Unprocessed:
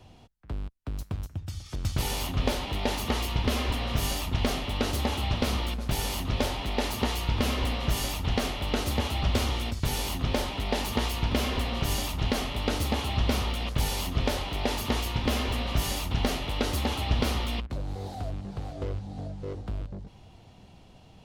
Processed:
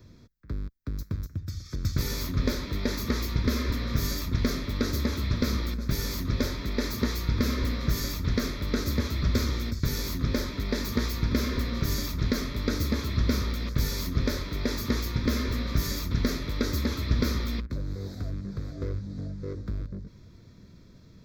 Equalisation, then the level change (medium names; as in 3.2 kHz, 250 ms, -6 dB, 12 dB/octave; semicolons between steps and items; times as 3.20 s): peaking EQ 290 Hz +4 dB 2.8 oct; treble shelf 8.8 kHz +7.5 dB; static phaser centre 2.9 kHz, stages 6; 0.0 dB